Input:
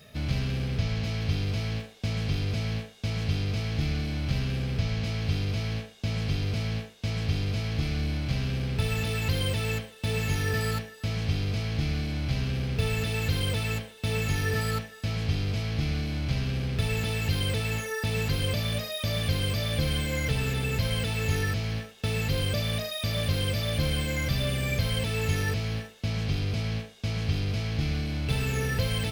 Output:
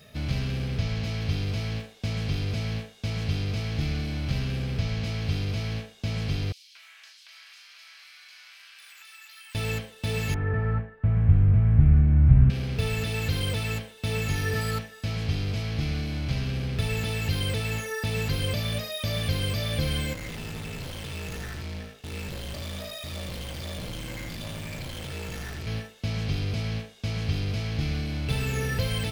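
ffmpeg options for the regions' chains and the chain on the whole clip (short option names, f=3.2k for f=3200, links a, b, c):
-filter_complex "[0:a]asettb=1/sr,asplit=3[a][b][c];[a]atrim=end=6.524[d];[b]atrim=start=6.52:end=9.55,asetpts=PTS-STARTPTS,afade=t=in:d=0.004:c=qsin,afade=t=out:st=3.026:d=0.004:c=qsin,highpass=f=1.3k:w=0.5412,highpass=f=1.3k:w=1.3066,acompressor=threshold=-43dB:ratio=10:attack=3.2:release=140:knee=1:detection=peak,acrossover=split=3200[e][f];[e]adelay=230[g];[g][f]amix=inputs=2:normalize=0,atrim=end_sample=133623[h];[c]atrim=start=9.546[i];[d][h]acrossfade=d=0.004:c1=hsin:c2=qsin[j];[j][i]acrossfade=d=0.004:c1=qsin:c2=hsin,asettb=1/sr,asplit=3[k][l][m];[k]atrim=end=10.344[n];[l]atrim=start=10.34:end=12.5,asetpts=PTS-STARTPTS,afade=t=in:d=0.004:c=qsin,afade=t=out:st=2.156:d=0.004:c=qsin,lowpass=f=1.7k:w=0.5412,lowpass=f=1.7k:w=1.3066,asubboost=boost=10.5:cutoff=170[o];[m]atrim=start=12.496[p];[n][o]acrossfade=d=0.004:c1=hsin:c2=qsin[q];[q][p]acrossfade=d=0.004:c1=qsin:c2=hsin,asettb=1/sr,asplit=3[r][s][t];[r]atrim=end=20.134[u];[s]atrim=start=20.13:end=25.67,asetpts=PTS-STARTPTS,afade=t=in:d=0.004:c=qsin,afade=t=out:st=5.536:d=0.004:c=qsin,aeval=exprs='val(0)*sin(2*PI*27*n/s)':c=same,volume=34.5dB,asoftclip=hard,volume=-34.5dB,aecho=1:1:84:0.596,atrim=end_sample=244314[v];[t]atrim=start=25.666[w];[u][v]acrossfade=d=0.004:c1=hsin:c2=qsin[x];[x][w]acrossfade=d=0.004:c1=qsin:c2=hsin"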